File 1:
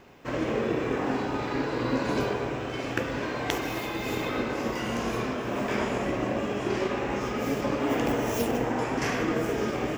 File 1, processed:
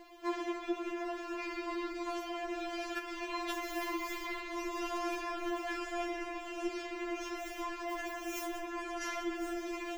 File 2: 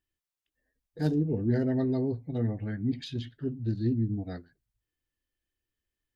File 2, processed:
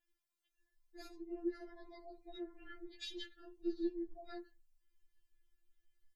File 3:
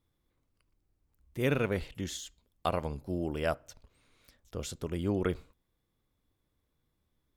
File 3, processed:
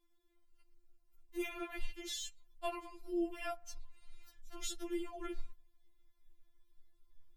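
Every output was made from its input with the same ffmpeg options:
ffmpeg -i in.wav -af "acompressor=threshold=-31dB:ratio=6,asubboost=boost=10.5:cutoff=120,afftfilt=real='re*4*eq(mod(b,16),0)':imag='im*4*eq(mod(b,16),0)':win_size=2048:overlap=0.75,volume=1.5dB" out.wav

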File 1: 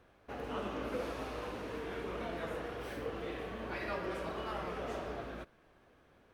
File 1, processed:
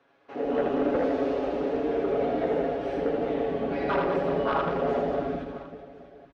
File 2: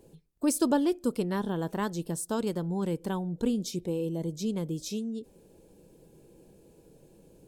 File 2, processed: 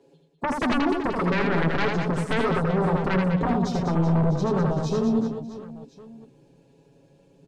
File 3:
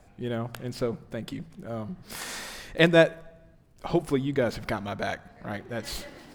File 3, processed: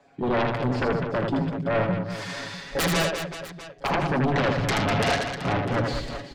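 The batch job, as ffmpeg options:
ffmpeg -i in.wav -filter_complex "[0:a]highpass=frequency=78:poles=1,afwtdn=0.0224,acrossover=split=200 6000:gain=0.178 1 0.0708[link_01][link_02][link_03];[link_01][link_02][link_03]amix=inputs=3:normalize=0,aecho=1:1:7.2:0.78,asubboost=boost=5.5:cutoff=150,acompressor=threshold=-28dB:ratio=8,aeval=exprs='0.141*sin(PI/2*6.31*val(0)/0.141)':channel_layout=same,asplit=2[link_04][link_05];[link_05]aecho=0:1:80|200|380|650|1055:0.631|0.398|0.251|0.158|0.1[link_06];[link_04][link_06]amix=inputs=2:normalize=0,volume=-4dB" out.wav

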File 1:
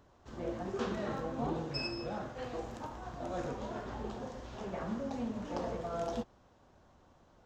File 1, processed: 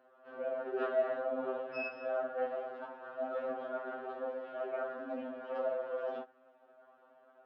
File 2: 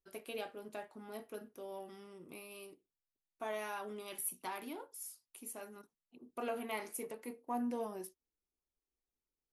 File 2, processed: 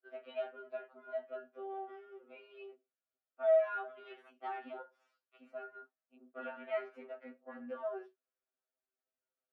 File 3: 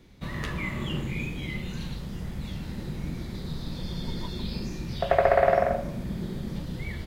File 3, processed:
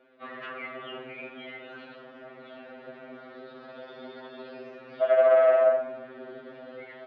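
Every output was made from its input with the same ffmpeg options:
ffmpeg -i in.wav -af "aeval=exprs='(tanh(12.6*val(0)+0.4)-tanh(0.4))/12.6':channel_layout=same,highpass=frequency=320:width=0.5412,highpass=frequency=320:width=1.3066,equalizer=frequency=370:width_type=q:width=4:gain=-5,equalizer=frequency=620:width_type=q:width=4:gain=9,equalizer=frequency=950:width_type=q:width=4:gain=-8,equalizer=frequency=1400:width_type=q:width=4:gain=6,equalizer=frequency=2100:width_type=q:width=4:gain=-7,lowpass=frequency=2500:width=0.5412,lowpass=frequency=2500:width=1.3066,afftfilt=real='re*2.45*eq(mod(b,6),0)':imag='im*2.45*eq(mod(b,6),0)':win_size=2048:overlap=0.75,volume=5.5dB" out.wav

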